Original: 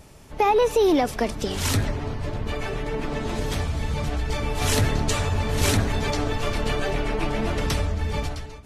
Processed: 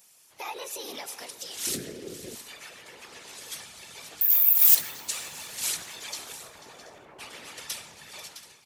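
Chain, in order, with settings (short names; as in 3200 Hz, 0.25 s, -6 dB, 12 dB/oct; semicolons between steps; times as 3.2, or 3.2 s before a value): 6.32–7.19 LPF 1000 Hz 12 dB/oct; tapped delay 0.49/0.66/0.729 s -16/-15.5/-19.5 dB; whisperiser; 1.67–2.35 resonant low shelf 590 Hz +13 dB, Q 3; 4.21–4.75 careless resampling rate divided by 3×, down none, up zero stuff; differentiator; two-slope reverb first 0.83 s, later 3.1 s, from -18 dB, DRR 17 dB; Doppler distortion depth 0.14 ms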